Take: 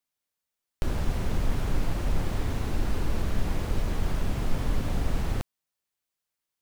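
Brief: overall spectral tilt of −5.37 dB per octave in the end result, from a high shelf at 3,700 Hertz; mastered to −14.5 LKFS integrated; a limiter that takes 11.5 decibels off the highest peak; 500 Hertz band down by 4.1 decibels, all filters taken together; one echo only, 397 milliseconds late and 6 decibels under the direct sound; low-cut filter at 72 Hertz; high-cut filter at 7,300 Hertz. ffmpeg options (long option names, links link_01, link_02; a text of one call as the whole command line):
ffmpeg -i in.wav -af "highpass=72,lowpass=7300,equalizer=frequency=500:width_type=o:gain=-5.5,highshelf=frequency=3700:gain=4.5,alimiter=level_in=4dB:limit=-24dB:level=0:latency=1,volume=-4dB,aecho=1:1:397:0.501,volume=22.5dB" out.wav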